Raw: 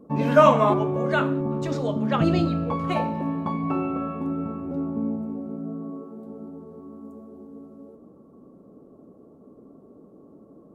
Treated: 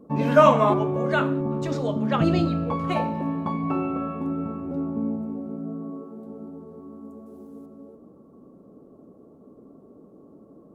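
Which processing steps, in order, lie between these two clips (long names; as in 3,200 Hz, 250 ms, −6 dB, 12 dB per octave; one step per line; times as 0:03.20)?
0:07.26–0:07.66: high-shelf EQ 3,200 Hz +11.5 dB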